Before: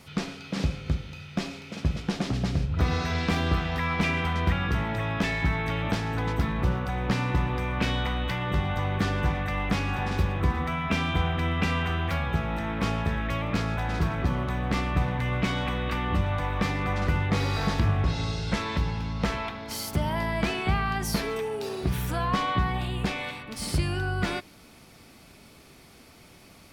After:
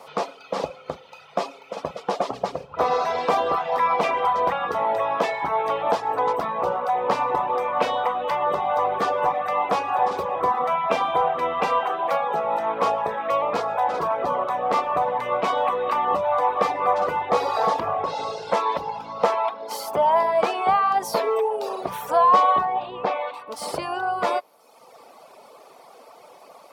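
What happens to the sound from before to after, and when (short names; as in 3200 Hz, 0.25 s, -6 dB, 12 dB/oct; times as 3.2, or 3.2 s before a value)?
11.8–12.43 HPF 150 Hz 24 dB/oct
22.65–23.34 air absorption 180 m
whole clip: HPF 310 Hz 12 dB/oct; reverb removal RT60 0.97 s; band shelf 730 Hz +15.5 dB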